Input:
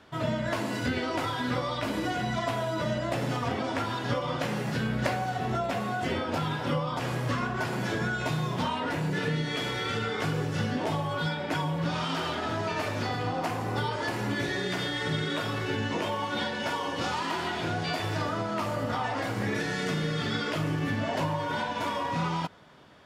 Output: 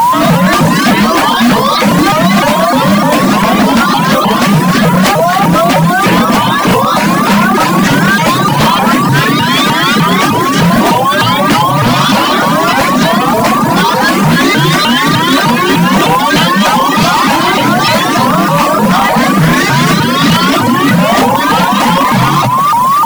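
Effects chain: whistle 1.1 kHz -34 dBFS; steep high-pass 180 Hz 96 dB/octave; frequency shift -31 Hz; modulation noise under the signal 19 dB; tone controls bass +9 dB, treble +1 dB; echo whose repeats swap between lows and highs 132 ms, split 910 Hz, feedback 70%, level -7 dB; reverb removal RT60 1.2 s; peaking EQ 430 Hz -11.5 dB 0.34 oct; wavefolder -25.5 dBFS; loudness maximiser +35 dB; vibrato with a chosen wave saw up 3.3 Hz, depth 250 cents; trim -1 dB

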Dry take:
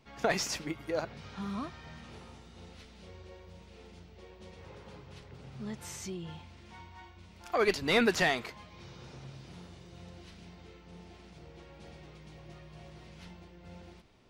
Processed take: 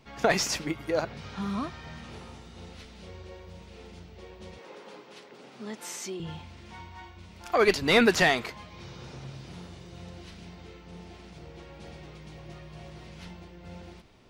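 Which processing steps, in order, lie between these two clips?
4.58–6.20 s: high-pass 240 Hz 24 dB/octave; trim +5.5 dB

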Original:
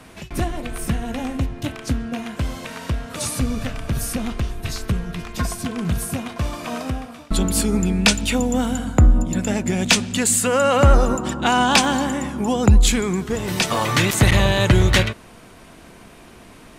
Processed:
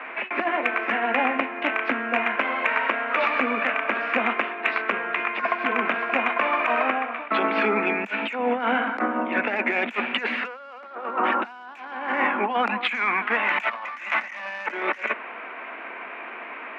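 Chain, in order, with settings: elliptic low-pass 2.4 kHz, stop band 70 dB; tilt EQ +4.5 dB/octave; overdrive pedal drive 16 dB, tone 1.9 kHz, clips at -2.5 dBFS; 12.50–14.67 s: peaking EQ 400 Hz -15 dB 0.67 oct; compressor with a negative ratio -24 dBFS, ratio -0.5; steep high-pass 210 Hz 72 dB/octave

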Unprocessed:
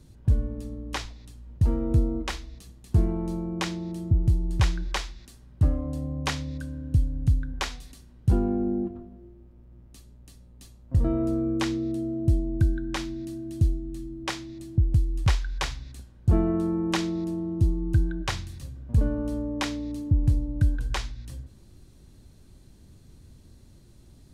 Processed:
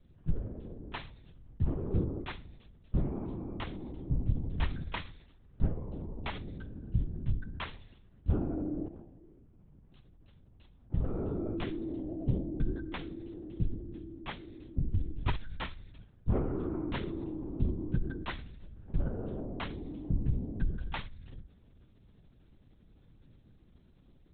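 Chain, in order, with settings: LPC vocoder at 8 kHz whisper; trim -8.5 dB

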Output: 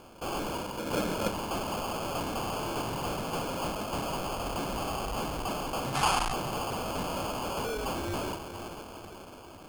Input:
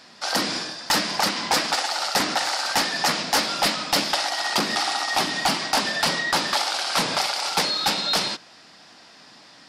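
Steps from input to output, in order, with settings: echo that smears into a reverb 462 ms, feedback 52%, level -14.5 dB; saturation -28 dBFS, distortion -7 dB; 0.77–1.28 s: resonant low shelf 670 Hz +7.5 dB, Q 3; sample-and-hold 23×; 5.95–6.32 s: time-frequency box 690–12000 Hz +11 dB; trim -2.5 dB

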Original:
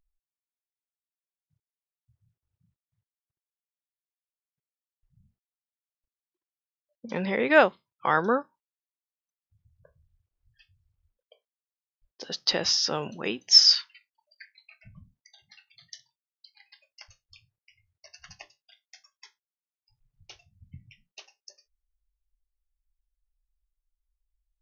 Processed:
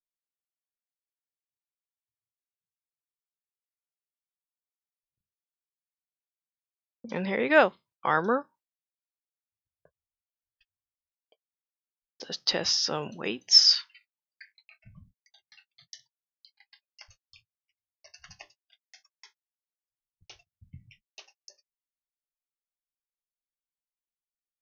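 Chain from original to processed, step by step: gate -56 dBFS, range -36 dB; trim -1.5 dB

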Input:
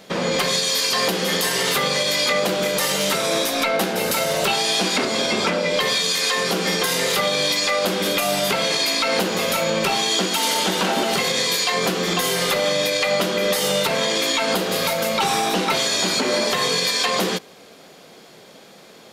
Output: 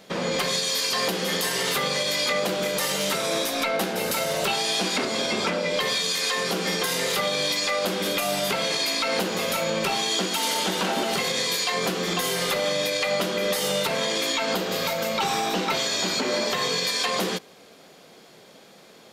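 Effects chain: 14.34–16.87 s: peaking EQ 10 kHz -12.5 dB 0.23 oct; trim -4.5 dB

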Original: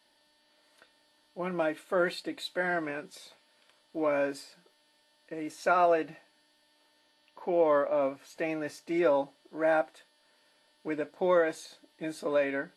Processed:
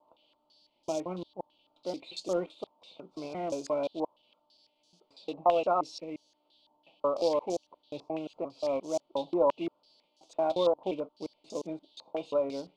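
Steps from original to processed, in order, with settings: slices played last to first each 176 ms, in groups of 5; short-mantissa float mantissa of 2-bit; Butterworth band-stop 1.7 kHz, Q 0.83; step-sequenced low-pass 6 Hz 1–6.3 kHz; trim -2.5 dB

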